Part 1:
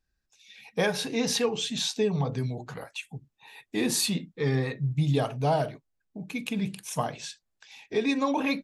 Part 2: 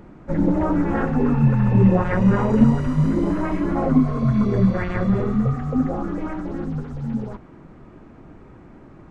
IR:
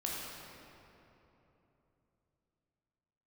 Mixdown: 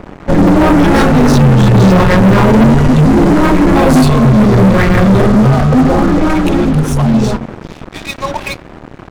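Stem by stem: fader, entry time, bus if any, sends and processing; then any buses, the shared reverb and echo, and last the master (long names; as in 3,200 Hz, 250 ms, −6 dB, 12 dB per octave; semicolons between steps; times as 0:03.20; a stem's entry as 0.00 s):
−8.0 dB, 0.00 s, no send, no echo send, Chebyshev high-pass filter 550 Hz, order 8
+1.0 dB, 0.00 s, no send, echo send −17 dB, hum removal 80.15 Hz, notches 28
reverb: not used
echo: single-tap delay 269 ms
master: leveller curve on the samples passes 5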